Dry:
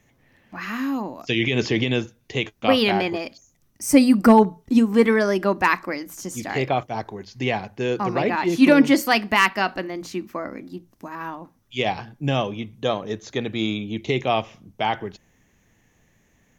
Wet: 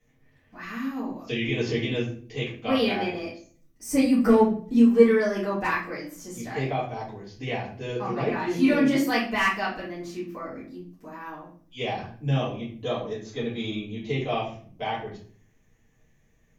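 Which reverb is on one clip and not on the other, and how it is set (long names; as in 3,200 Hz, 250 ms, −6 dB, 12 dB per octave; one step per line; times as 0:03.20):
rectangular room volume 42 cubic metres, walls mixed, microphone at 2 metres
level −17 dB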